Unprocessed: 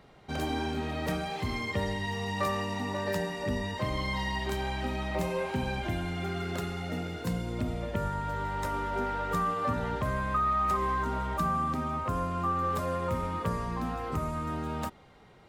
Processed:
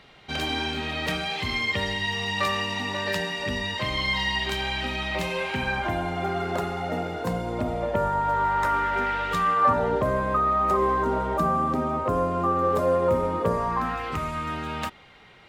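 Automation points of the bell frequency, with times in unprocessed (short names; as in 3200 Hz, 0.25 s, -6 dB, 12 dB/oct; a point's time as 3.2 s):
bell +13 dB 2 oct
5.46 s 3000 Hz
6 s 750 Hz
8.17 s 750 Hz
9.37 s 3100 Hz
9.89 s 480 Hz
13.48 s 480 Hz
14.04 s 2600 Hz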